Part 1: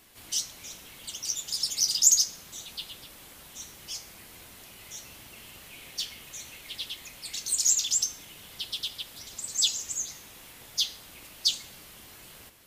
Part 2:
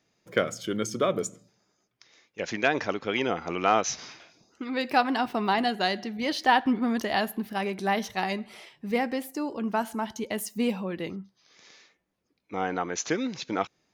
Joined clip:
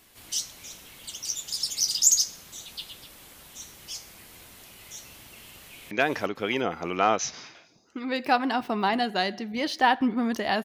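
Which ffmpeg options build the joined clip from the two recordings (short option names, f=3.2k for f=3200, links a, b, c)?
-filter_complex "[0:a]apad=whole_dur=10.64,atrim=end=10.64,atrim=end=5.912[a];[1:a]atrim=start=2.558:end=7.29[b];[a][b]acrossfade=d=0.004:c1=hsin:c2=hsin,asplit=2[c][d];[d]afade=t=in:st=5.65:d=0.01,afade=t=out:st=5.91:d=0.01,aecho=0:1:350|700|1050|1400:0.630957|0.220835|0.0772923|0.0270523[e];[c][e]amix=inputs=2:normalize=0"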